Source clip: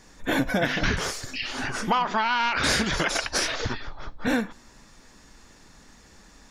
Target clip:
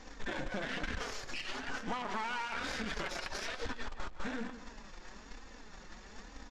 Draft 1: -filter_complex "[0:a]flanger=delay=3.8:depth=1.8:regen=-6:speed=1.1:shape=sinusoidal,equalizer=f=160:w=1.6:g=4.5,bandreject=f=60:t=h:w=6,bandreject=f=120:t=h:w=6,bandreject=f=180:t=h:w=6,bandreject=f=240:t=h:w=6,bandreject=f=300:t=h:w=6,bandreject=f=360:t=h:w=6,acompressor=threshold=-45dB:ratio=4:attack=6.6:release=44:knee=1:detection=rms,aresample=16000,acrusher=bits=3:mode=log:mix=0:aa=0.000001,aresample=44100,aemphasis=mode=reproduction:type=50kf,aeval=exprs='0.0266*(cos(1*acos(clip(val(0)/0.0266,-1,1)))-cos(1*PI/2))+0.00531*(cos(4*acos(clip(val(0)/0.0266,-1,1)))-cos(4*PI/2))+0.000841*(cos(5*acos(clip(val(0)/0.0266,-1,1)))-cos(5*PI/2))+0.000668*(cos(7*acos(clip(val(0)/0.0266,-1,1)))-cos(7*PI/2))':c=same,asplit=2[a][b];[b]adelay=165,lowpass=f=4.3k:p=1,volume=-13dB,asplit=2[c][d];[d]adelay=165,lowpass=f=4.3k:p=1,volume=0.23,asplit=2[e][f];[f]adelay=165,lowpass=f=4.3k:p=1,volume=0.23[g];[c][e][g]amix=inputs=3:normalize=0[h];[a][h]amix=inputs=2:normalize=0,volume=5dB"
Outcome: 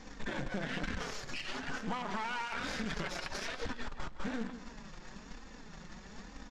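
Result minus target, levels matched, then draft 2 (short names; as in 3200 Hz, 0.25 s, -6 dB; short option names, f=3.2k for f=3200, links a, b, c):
125 Hz band +4.0 dB
-filter_complex "[0:a]flanger=delay=3.8:depth=1.8:regen=-6:speed=1.1:shape=sinusoidal,equalizer=f=160:w=1.6:g=-6,bandreject=f=60:t=h:w=6,bandreject=f=120:t=h:w=6,bandreject=f=180:t=h:w=6,bandreject=f=240:t=h:w=6,bandreject=f=300:t=h:w=6,bandreject=f=360:t=h:w=6,acompressor=threshold=-45dB:ratio=4:attack=6.6:release=44:knee=1:detection=rms,aresample=16000,acrusher=bits=3:mode=log:mix=0:aa=0.000001,aresample=44100,aemphasis=mode=reproduction:type=50kf,aeval=exprs='0.0266*(cos(1*acos(clip(val(0)/0.0266,-1,1)))-cos(1*PI/2))+0.00531*(cos(4*acos(clip(val(0)/0.0266,-1,1)))-cos(4*PI/2))+0.000841*(cos(5*acos(clip(val(0)/0.0266,-1,1)))-cos(5*PI/2))+0.000668*(cos(7*acos(clip(val(0)/0.0266,-1,1)))-cos(7*PI/2))':c=same,asplit=2[a][b];[b]adelay=165,lowpass=f=4.3k:p=1,volume=-13dB,asplit=2[c][d];[d]adelay=165,lowpass=f=4.3k:p=1,volume=0.23,asplit=2[e][f];[f]adelay=165,lowpass=f=4.3k:p=1,volume=0.23[g];[c][e][g]amix=inputs=3:normalize=0[h];[a][h]amix=inputs=2:normalize=0,volume=5dB"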